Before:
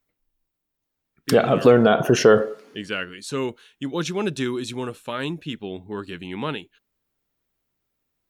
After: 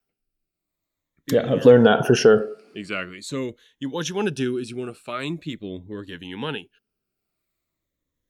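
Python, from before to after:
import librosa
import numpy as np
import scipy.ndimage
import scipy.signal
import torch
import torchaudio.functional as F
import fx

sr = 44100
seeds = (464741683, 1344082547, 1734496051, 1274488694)

y = fx.spec_ripple(x, sr, per_octave=1.1, drift_hz=-0.44, depth_db=9)
y = fx.wow_flutter(y, sr, seeds[0], rate_hz=2.1, depth_cents=20.0)
y = fx.rotary(y, sr, hz=0.9)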